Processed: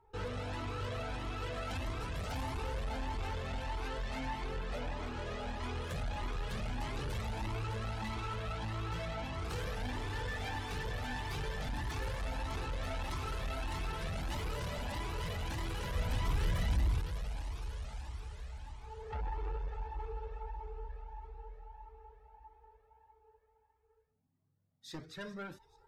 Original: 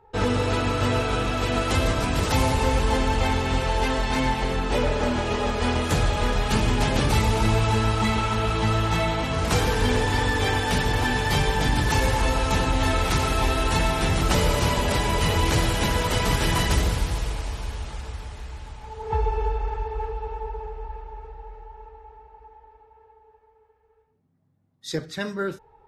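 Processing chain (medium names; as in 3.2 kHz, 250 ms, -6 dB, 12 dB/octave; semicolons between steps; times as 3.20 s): dynamic bell 7.7 kHz, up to -6 dB, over -46 dBFS, Q 0.75; feedback echo behind a high-pass 422 ms, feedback 52%, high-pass 4.2 kHz, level -18.5 dB; saturation -25.5 dBFS, distortion -8 dB; 15.95–17.00 s: bass shelf 190 Hz +8.5 dB; Shepard-style flanger rising 1.6 Hz; trim -6.5 dB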